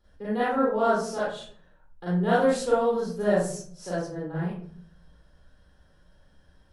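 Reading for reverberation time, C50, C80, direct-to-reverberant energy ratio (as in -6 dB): 0.55 s, -1.5 dB, 4.5 dB, -10.0 dB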